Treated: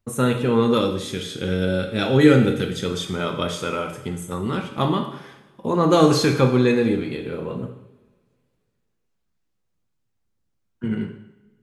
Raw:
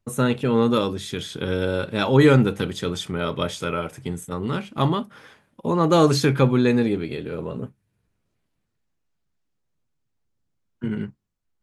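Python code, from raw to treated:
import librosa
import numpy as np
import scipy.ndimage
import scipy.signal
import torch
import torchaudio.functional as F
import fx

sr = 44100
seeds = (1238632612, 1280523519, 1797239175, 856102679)

y = fx.peak_eq(x, sr, hz=1000.0, db=-13.0, octaves=0.38, at=(0.8, 2.86))
y = fx.rev_double_slope(y, sr, seeds[0], early_s=0.78, late_s=2.3, knee_db=-22, drr_db=3.5)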